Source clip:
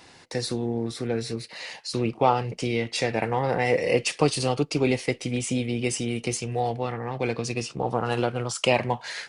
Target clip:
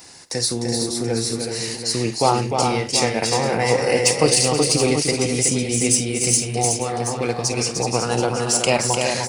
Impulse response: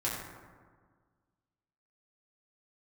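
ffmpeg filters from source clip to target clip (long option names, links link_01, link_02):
-af "aexciter=amount=2.6:drive=8.4:freq=4700,aecho=1:1:50|302|373|479|730:0.188|0.531|0.501|0.168|0.316,volume=2.5dB"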